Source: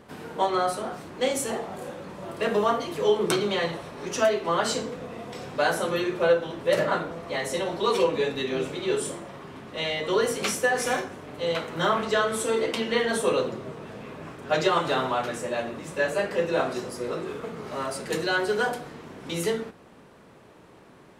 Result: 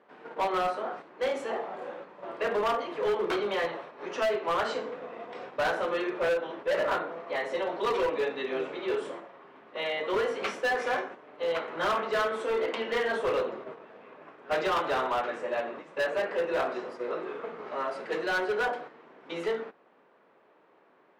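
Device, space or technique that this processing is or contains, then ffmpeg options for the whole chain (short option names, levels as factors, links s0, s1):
walkie-talkie: -af "highpass=410,lowpass=2300,asoftclip=type=hard:threshold=0.0668,agate=range=0.447:threshold=0.00891:ratio=16:detection=peak"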